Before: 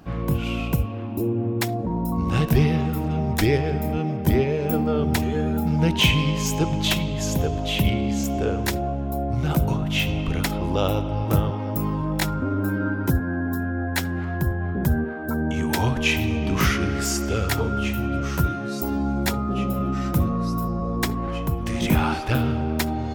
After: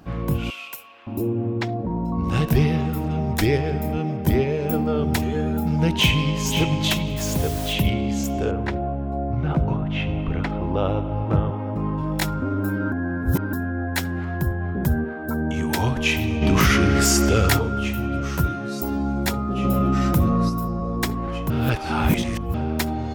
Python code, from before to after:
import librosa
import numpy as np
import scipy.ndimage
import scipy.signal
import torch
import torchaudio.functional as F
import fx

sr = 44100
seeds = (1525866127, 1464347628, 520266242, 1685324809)

y = fx.highpass(x, sr, hz=1400.0, slope=12, at=(0.5, 1.07))
y = fx.air_absorb(y, sr, metres=170.0, at=(1.58, 2.24))
y = fx.echo_throw(y, sr, start_s=5.92, length_s=0.51, ms=530, feedback_pct=15, wet_db=-7.0)
y = fx.quant_dither(y, sr, seeds[0], bits=6, dither='triangular', at=(7.16, 7.72), fade=0.02)
y = fx.lowpass(y, sr, hz=2100.0, slope=12, at=(8.51, 11.98))
y = fx.env_flatten(y, sr, amount_pct=70, at=(16.41, 17.57), fade=0.02)
y = fx.env_flatten(y, sr, amount_pct=50, at=(19.63, 20.48), fade=0.02)
y = fx.edit(y, sr, fx.reverse_span(start_s=12.92, length_s=0.61),
    fx.reverse_span(start_s=21.5, length_s=1.04), tone=tone)